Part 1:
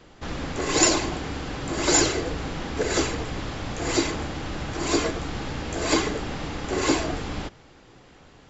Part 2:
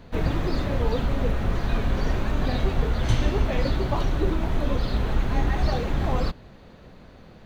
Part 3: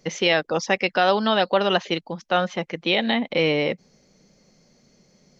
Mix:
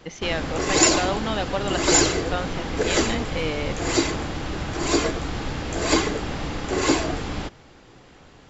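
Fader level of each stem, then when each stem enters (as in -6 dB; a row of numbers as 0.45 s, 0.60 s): +2.0 dB, -15.0 dB, -7.5 dB; 0.00 s, 0.30 s, 0.00 s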